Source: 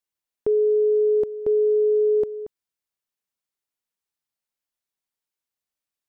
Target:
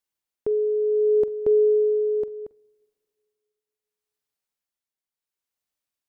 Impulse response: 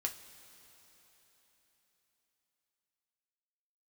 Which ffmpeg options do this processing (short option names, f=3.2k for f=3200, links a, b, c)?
-filter_complex "[0:a]tremolo=f=0.7:d=0.53,asplit=2[a][b];[1:a]atrim=start_sample=2205,asetrate=74970,aresample=44100,adelay=45[c];[b][c]afir=irnorm=-1:irlink=0,volume=-15dB[d];[a][d]amix=inputs=2:normalize=0,volume=1.5dB"